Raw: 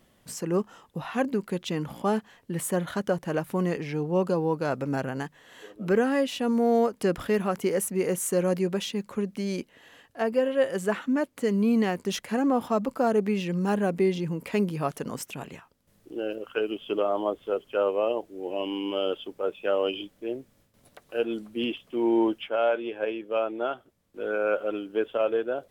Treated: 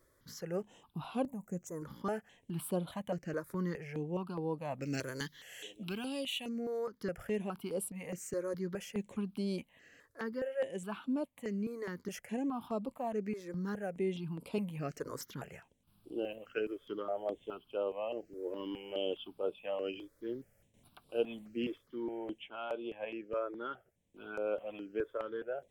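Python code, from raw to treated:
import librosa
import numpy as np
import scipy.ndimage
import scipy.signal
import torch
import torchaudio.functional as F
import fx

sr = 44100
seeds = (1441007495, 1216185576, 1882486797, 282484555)

y = fx.high_shelf_res(x, sr, hz=2000.0, db=12.0, q=1.5, at=(4.82, 6.49))
y = fx.rider(y, sr, range_db=5, speed_s=0.5)
y = fx.curve_eq(y, sr, hz=(160.0, 380.0, 740.0, 4300.0, 6300.0), db=(0, -7, 4, -29, 4), at=(1.27, 1.82))
y = fx.phaser_held(y, sr, hz=4.8, low_hz=770.0, high_hz=6400.0)
y = y * 10.0 ** (-8.5 / 20.0)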